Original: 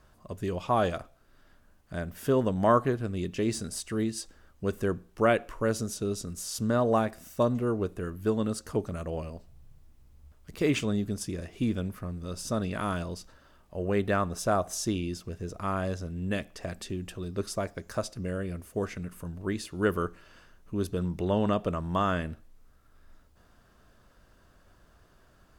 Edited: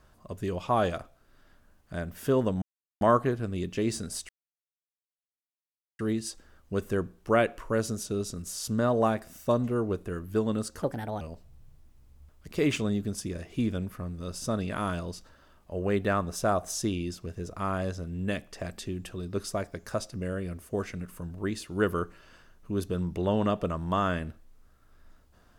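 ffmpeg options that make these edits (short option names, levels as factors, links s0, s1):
-filter_complex "[0:a]asplit=5[s0][s1][s2][s3][s4];[s0]atrim=end=2.62,asetpts=PTS-STARTPTS,afade=t=out:st=2.616:d=0.004:c=hsin,apad=pad_dur=0.39[s5];[s1]atrim=start=2.62:end=3.9,asetpts=PTS-STARTPTS,afade=t=in:d=0.004:c=hsin,afade=t=out:st=1.276:d=0.004:c=hsin,apad=pad_dur=1.7[s6];[s2]atrim=start=3.9:end=8.734,asetpts=PTS-STARTPTS,afade=t=in:d=0.004:c=hsin[s7];[s3]atrim=start=8.73:end=9.24,asetpts=PTS-STARTPTS,asetrate=57771,aresample=44100[s8];[s4]atrim=start=9.236[s9];[s5][s6][s7]concat=n=3:v=0:a=1[s10];[s10][s8]acrossfade=d=0.004:c1=hsin:c2=hsin[s11];[s11][s9]acrossfade=d=0.004:c1=hsin:c2=hsin"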